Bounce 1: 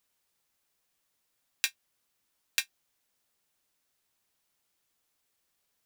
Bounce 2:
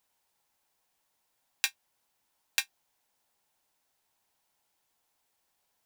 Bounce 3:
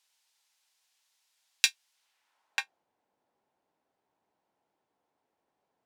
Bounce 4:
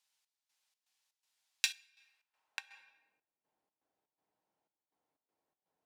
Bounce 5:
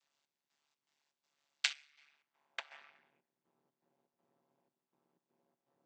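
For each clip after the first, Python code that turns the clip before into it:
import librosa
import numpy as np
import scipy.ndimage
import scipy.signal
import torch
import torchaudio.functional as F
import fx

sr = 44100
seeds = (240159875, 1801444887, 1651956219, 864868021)

y1 = fx.peak_eq(x, sr, hz=850.0, db=9.0, octaves=0.78)
y1 = fx.notch(y1, sr, hz=1200.0, q=15.0)
y2 = fx.filter_sweep_bandpass(y1, sr, from_hz=4400.0, to_hz=350.0, start_s=1.92, end_s=2.86, q=0.77)
y2 = F.gain(torch.from_numpy(y2), 7.5).numpy()
y3 = fx.room_shoebox(y2, sr, seeds[0], volume_m3=550.0, walls='mixed', distance_m=0.5)
y3 = fx.step_gate(y3, sr, bpm=122, pattern='xx..xx.xx.xx', floor_db=-12.0, edge_ms=4.5)
y3 = F.gain(torch.from_numpy(y3), -7.5).numpy()
y4 = fx.chord_vocoder(y3, sr, chord='minor triad', root=56)
y4 = y4 * np.sin(2.0 * np.pi * 72.0 * np.arange(len(y4)) / sr)
y4 = F.gain(torch.from_numpy(y4), 2.5).numpy()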